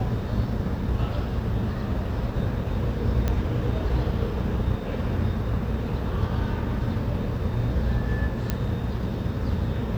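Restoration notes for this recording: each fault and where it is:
0:03.28: click −13 dBFS
0:08.50: click −11 dBFS

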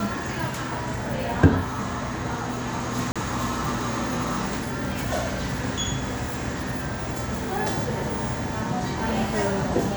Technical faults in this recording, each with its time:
0:03.12–0:03.16: drop-out 36 ms

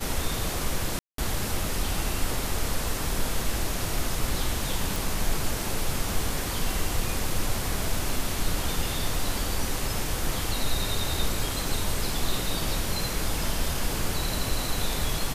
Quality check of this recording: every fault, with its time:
0:00.99–0:01.18: drop-out 193 ms
0:04.96: click

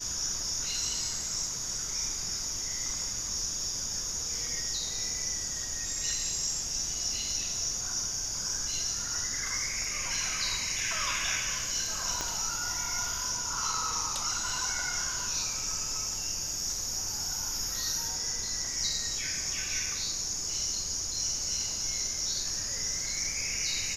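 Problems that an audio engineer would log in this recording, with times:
0:12.21: click −16 dBFS

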